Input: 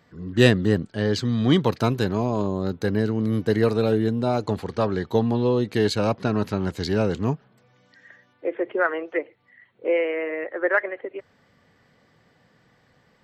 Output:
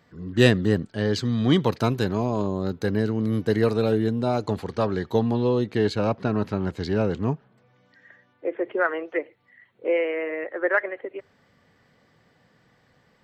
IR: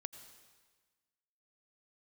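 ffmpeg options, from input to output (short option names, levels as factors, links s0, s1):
-filter_complex "[0:a]asettb=1/sr,asplit=3[s0][s1][s2];[s0]atrim=end=5.644[s3];[s1]atrim=start=5.64:end=8.64,asetpts=PTS-STARTPTS,afade=t=in:d=0.004:c=qsin,afade=t=out:st=2.996:d=0.004:c=qsin,lowpass=f=2800:p=1[s4];[s2]atrim=start=8.636[s5];[s3][s4]acrossfade=d=0.004:c1=hsin:c2=qsin[s6];[s6][s5]acrossfade=d=0.004:c1=qsin:c2=hsin[s7];[1:a]atrim=start_sample=2205,atrim=end_sample=3528[s8];[s7][s8]afir=irnorm=-1:irlink=0,volume=1.41"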